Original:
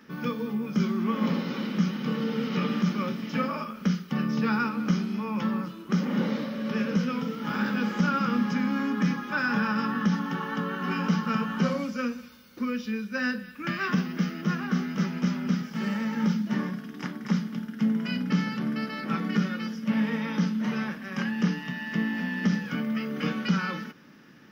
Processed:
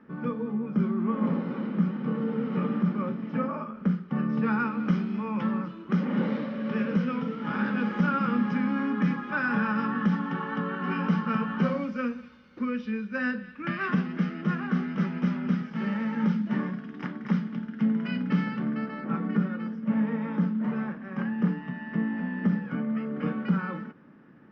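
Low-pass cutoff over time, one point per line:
4.03 s 1.3 kHz
4.81 s 2.4 kHz
18.44 s 2.4 kHz
19.09 s 1.3 kHz

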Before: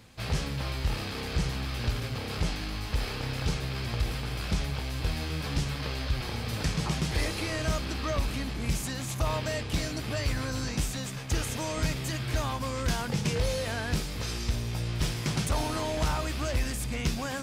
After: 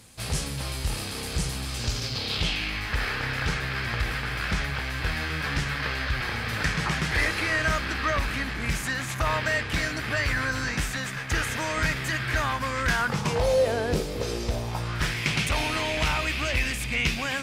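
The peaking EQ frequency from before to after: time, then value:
peaking EQ +14.5 dB 1.2 oct
1.61 s 9.6 kHz
2.93 s 1.7 kHz
12.95 s 1.7 kHz
13.74 s 460 Hz
14.39 s 460 Hz
15.24 s 2.4 kHz

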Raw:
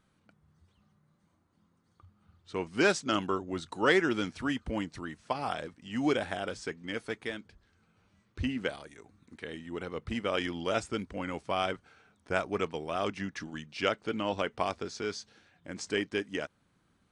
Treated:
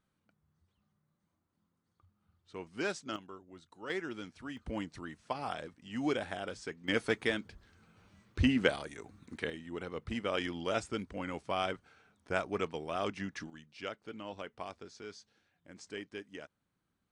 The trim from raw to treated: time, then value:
-10 dB
from 3.16 s -18 dB
from 3.90 s -12 dB
from 4.57 s -4.5 dB
from 6.88 s +5 dB
from 9.50 s -3 dB
from 13.50 s -12 dB

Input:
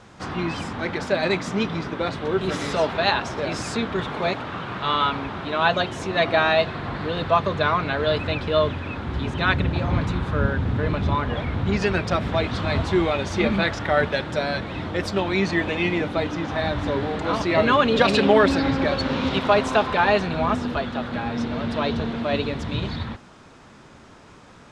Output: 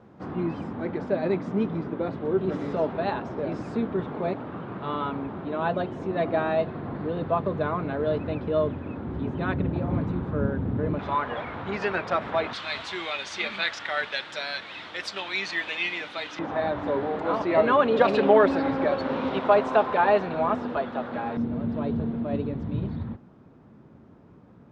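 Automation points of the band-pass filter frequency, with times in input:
band-pass filter, Q 0.71
280 Hz
from 10.99 s 1 kHz
from 12.53 s 3.4 kHz
from 16.39 s 610 Hz
from 21.37 s 180 Hz

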